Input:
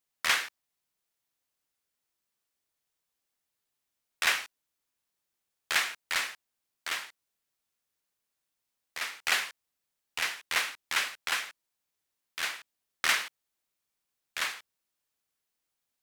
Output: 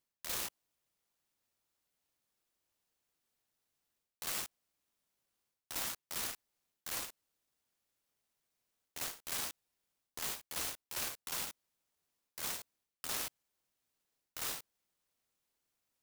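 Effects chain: reverse; compression 12:1, threshold -37 dBFS, peak gain reduction 17 dB; reverse; delay time shaken by noise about 5.3 kHz, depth 0.18 ms; trim +1 dB

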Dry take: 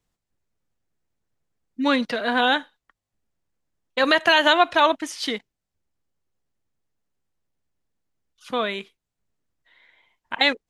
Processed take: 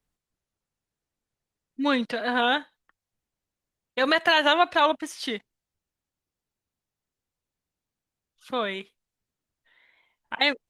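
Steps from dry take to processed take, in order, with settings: wow and flutter 53 cents; trim -3 dB; Opus 32 kbps 48 kHz

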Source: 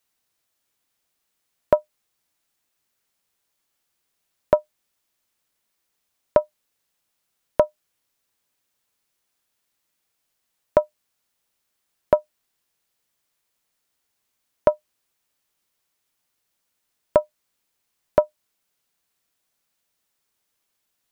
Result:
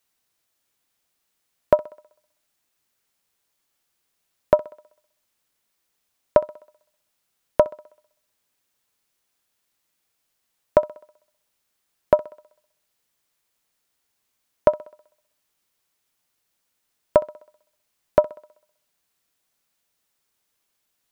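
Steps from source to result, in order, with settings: thinning echo 64 ms, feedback 54%, high-pass 190 Hz, level -19.5 dB; trim +1 dB

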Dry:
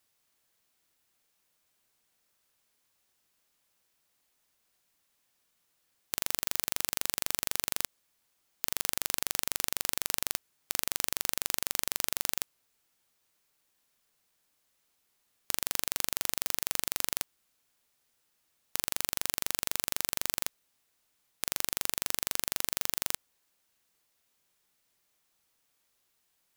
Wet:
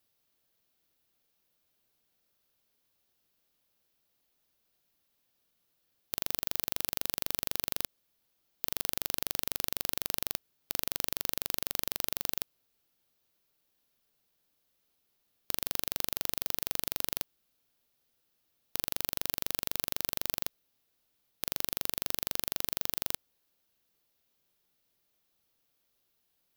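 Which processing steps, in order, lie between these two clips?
graphic EQ 1/2/8 kHz -5/-6/-10 dB; trim +1.5 dB

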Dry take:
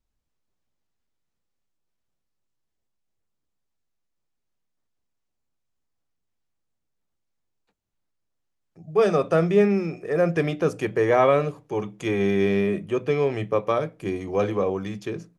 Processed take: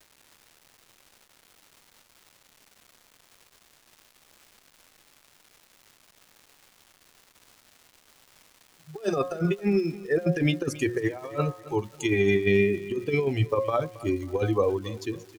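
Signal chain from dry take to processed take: expander on every frequency bin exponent 2; peaking EQ 190 Hz -9 dB 0.45 oct; de-hum 180.3 Hz, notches 12; compressor with a negative ratio -30 dBFS, ratio -0.5; crackle 560 per s -49 dBFS; feedback delay 272 ms, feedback 37%, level -18 dB; trim +6 dB

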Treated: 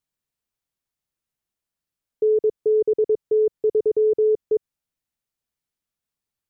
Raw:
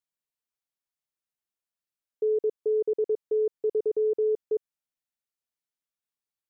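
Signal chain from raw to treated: bass shelf 230 Hz +11 dB; trim +4 dB

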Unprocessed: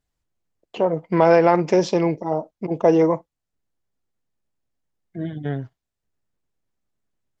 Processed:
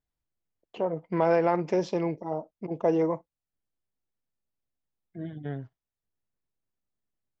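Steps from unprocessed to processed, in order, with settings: treble shelf 4.9 kHz -7.5 dB; trim -8.5 dB

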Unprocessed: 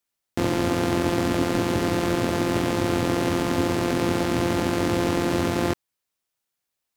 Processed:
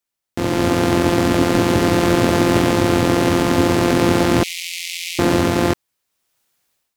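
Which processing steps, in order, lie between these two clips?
4.43–5.19 s: steep high-pass 2.1 kHz 96 dB/octave; level rider gain up to 15.5 dB; trim -1 dB

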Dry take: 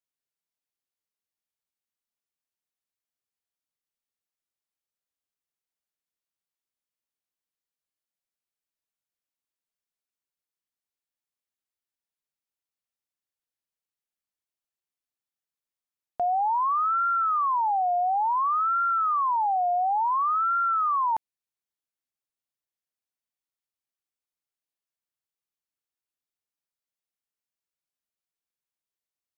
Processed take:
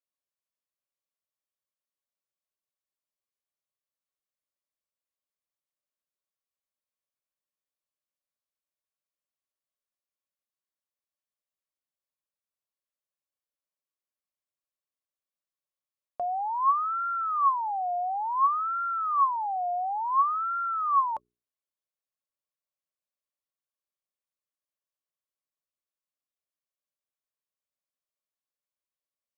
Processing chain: hum notches 60/120/180/240/300/360/420 Hz; small resonant body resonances 580/1100 Hz, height 12 dB, ringing for 45 ms; trim -6.5 dB

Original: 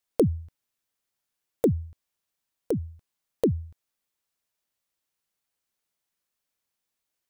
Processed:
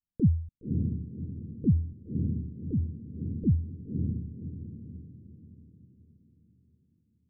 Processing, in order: inverse Chebyshev low-pass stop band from 1 kHz, stop band 70 dB; echo that smears into a reverb 563 ms, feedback 42%, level -4 dB; trim +4 dB

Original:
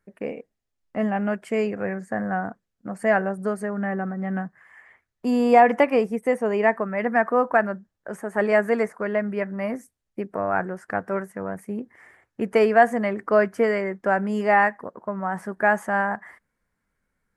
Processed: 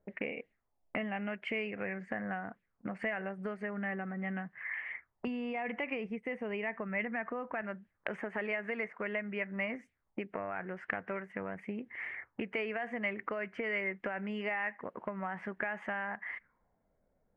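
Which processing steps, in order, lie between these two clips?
5.27–7.62 s: bass shelf 190 Hz +10.5 dB; peak limiter -14 dBFS, peak gain reduction 9.5 dB; compression 10:1, threshold -36 dBFS, peak gain reduction 18.5 dB; peaking EQ 2.1 kHz +8 dB 0.39 oct; touch-sensitive low-pass 610–2800 Hz up, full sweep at -43 dBFS

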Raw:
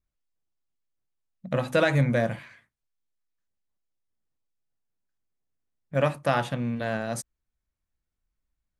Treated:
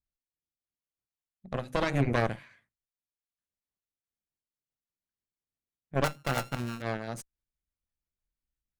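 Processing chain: 6.04–6.82 s: sorted samples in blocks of 32 samples; rotary cabinet horn 0.75 Hz, later 6 Hz, at 3.62 s; Chebyshev shaper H 6 -9 dB, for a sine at -8 dBFS; trim -6.5 dB

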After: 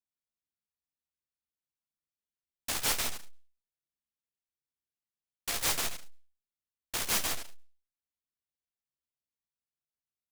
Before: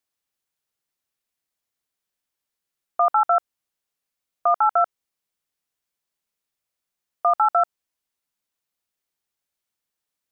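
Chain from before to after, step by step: reverse the whole clip; bass shelf 430 Hz +10.5 dB; band-stop 1.2 kHz, Q 5.8; Chebyshev shaper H 3 -12 dB, 4 -20 dB, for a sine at -9.5 dBFS; saturation -21.5 dBFS, distortion -6 dB; inharmonic resonator 70 Hz, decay 0.26 s, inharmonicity 0.002; reverberation RT60 0.35 s, pre-delay 60 ms, DRR 14.5 dB; delay time shaken by noise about 3.1 kHz, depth 0.49 ms; trim +3 dB

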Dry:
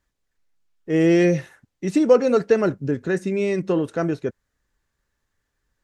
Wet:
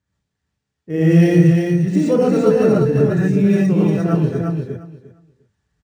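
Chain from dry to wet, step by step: high-pass 83 Hz 24 dB/octave; tone controls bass +14 dB, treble +4 dB; on a send: feedback delay 351 ms, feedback 17%, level -4.5 dB; on the sum: gated-style reverb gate 150 ms rising, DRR -7 dB; decimation joined by straight lines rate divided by 3×; trim -7.5 dB

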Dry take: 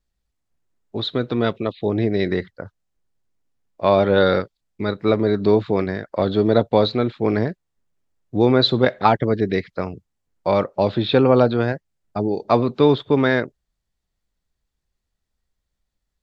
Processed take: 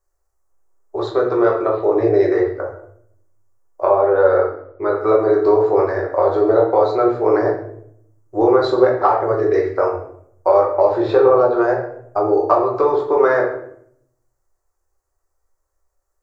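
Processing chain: FFT filter 110 Hz 0 dB, 190 Hz -28 dB, 350 Hz +9 dB, 1.2 kHz +14 dB, 3.5 kHz -13 dB, 6.1 kHz +10 dB; compression, threshold -9 dBFS, peak gain reduction 11 dB; 3.85–4.96 s: distance through air 250 m; simulated room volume 130 m³, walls mixed, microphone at 1.1 m; trim -5.5 dB

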